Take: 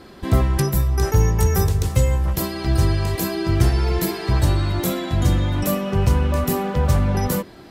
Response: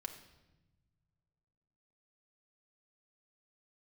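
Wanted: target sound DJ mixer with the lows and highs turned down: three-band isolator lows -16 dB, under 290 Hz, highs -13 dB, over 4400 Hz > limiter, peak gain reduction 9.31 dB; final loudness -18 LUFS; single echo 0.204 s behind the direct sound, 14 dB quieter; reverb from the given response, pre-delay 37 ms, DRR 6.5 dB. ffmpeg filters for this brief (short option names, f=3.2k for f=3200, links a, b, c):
-filter_complex "[0:a]aecho=1:1:204:0.2,asplit=2[a][b];[1:a]atrim=start_sample=2205,adelay=37[c];[b][c]afir=irnorm=-1:irlink=0,volume=-4dB[d];[a][d]amix=inputs=2:normalize=0,acrossover=split=290 4400:gain=0.158 1 0.224[e][f][g];[e][f][g]amix=inputs=3:normalize=0,volume=13dB,alimiter=limit=-9dB:level=0:latency=1"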